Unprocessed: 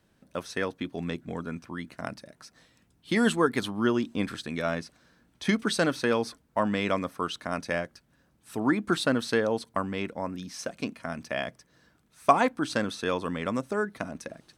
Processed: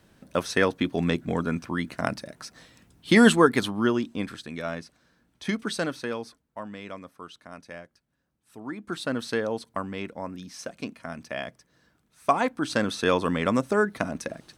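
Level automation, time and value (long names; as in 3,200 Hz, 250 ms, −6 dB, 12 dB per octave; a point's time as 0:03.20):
0:03.19 +8 dB
0:04.37 −3 dB
0:05.79 −3 dB
0:06.67 −12 dB
0:08.66 −12 dB
0:09.20 −2 dB
0:12.35 −2 dB
0:13.06 +6 dB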